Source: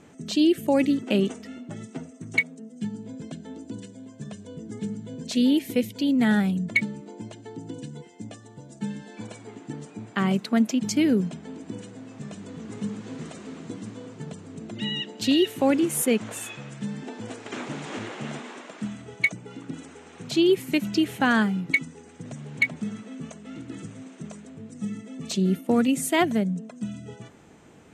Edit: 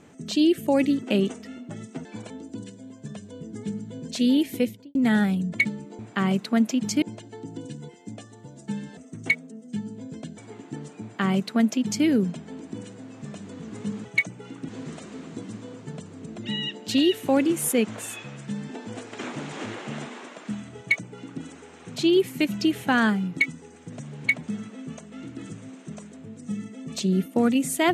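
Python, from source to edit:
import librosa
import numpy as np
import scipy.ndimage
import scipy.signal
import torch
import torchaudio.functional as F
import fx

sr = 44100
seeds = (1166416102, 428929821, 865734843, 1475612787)

y = fx.studio_fade_out(x, sr, start_s=5.75, length_s=0.36)
y = fx.edit(y, sr, fx.swap(start_s=2.05, length_s=1.41, other_s=9.1, other_length_s=0.25),
    fx.duplicate(start_s=9.99, length_s=1.03, to_s=7.15),
    fx.duplicate(start_s=19.11, length_s=0.64, to_s=13.02), tone=tone)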